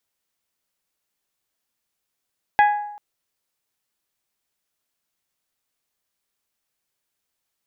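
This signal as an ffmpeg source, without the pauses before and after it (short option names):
-f lavfi -i "aevalsrc='0.316*pow(10,-3*t/0.82)*sin(2*PI*830*t)+0.15*pow(10,-3*t/0.505)*sin(2*PI*1660*t)+0.0708*pow(10,-3*t/0.444)*sin(2*PI*1992*t)+0.0335*pow(10,-3*t/0.38)*sin(2*PI*2490*t)+0.0158*pow(10,-3*t/0.311)*sin(2*PI*3320*t)':d=0.39:s=44100"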